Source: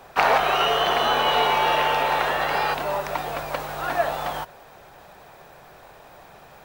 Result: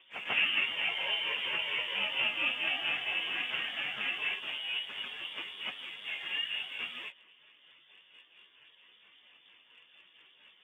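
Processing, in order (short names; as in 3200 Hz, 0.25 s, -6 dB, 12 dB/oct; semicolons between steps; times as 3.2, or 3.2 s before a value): on a send: reverse echo 92 ms -12.5 dB; on the sum: rotary speaker horn 7 Hz; treble ducked by the level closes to 2200 Hz, closed at -20.5 dBFS; careless resampling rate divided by 8×, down none, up hold; plain phase-vocoder stretch 1.6×; inverted band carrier 3500 Hz; in parallel at -10.5 dB: crossover distortion -45 dBFS; on the sum: HPF 150 Hz 12 dB/oct; gain -7.5 dB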